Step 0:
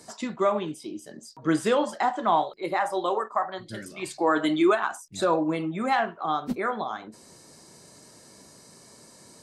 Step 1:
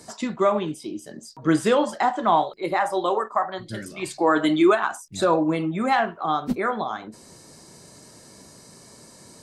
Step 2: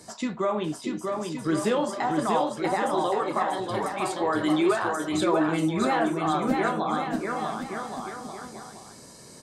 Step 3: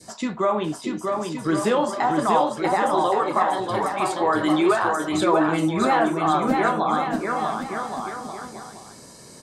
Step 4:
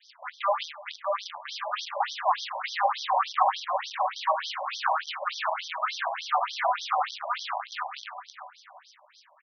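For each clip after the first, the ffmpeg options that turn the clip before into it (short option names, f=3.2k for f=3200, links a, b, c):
-af "lowshelf=f=140:g=5.5,volume=3dB"
-filter_complex "[0:a]alimiter=limit=-15.5dB:level=0:latency=1:release=28,flanger=delay=9.9:depth=5.8:regen=-62:speed=0.38:shape=triangular,asplit=2[a][b];[b]aecho=0:1:640|1120|1480|1750|1952:0.631|0.398|0.251|0.158|0.1[c];[a][c]amix=inputs=2:normalize=0,volume=2.5dB"
-af "adynamicequalizer=threshold=0.0112:dfrequency=1000:dqfactor=0.99:tfrequency=1000:tqfactor=0.99:attack=5:release=100:ratio=0.375:range=2:mode=boostabove:tftype=bell,volume=2.5dB"
-filter_complex "[0:a]acrusher=bits=5:dc=4:mix=0:aa=0.000001,asplit=2[a][b];[b]adelay=103,lowpass=f=2.8k:p=1,volume=-12.5dB,asplit=2[c][d];[d]adelay=103,lowpass=f=2.8k:p=1,volume=0.54,asplit=2[e][f];[f]adelay=103,lowpass=f=2.8k:p=1,volume=0.54,asplit=2[g][h];[h]adelay=103,lowpass=f=2.8k:p=1,volume=0.54,asplit=2[i][j];[j]adelay=103,lowpass=f=2.8k:p=1,volume=0.54,asplit=2[k][l];[l]adelay=103,lowpass=f=2.8k:p=1,volume=0.54[m];[a][c][e][g][i][k][m]amix=inputs=7:normalize=0,afftfilt=real='re*between(b*sr/1024,750*pow(4500/750,0.5+0.5*sin(2*PI*3.4*pts/sr))/1.41,750*pow(4500/750,0.5+0.5*sin(2*PI*3.4*pts/sr))*1.41)':imag='im*between(b*sr/1024,750*pow(4500/750,0.5+0.5*sin(2*PI*3.4*pts/sr))/1.41,750*pow(4500/750,0.5+0.5*sin(2*PI*3.4*pts/sr))*1.41)':win_size=1024:overlap=0.75"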